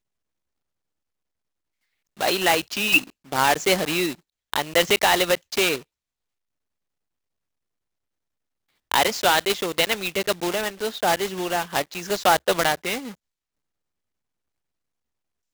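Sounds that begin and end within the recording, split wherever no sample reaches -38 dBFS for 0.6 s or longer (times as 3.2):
2.17–5.81
8.91–13.13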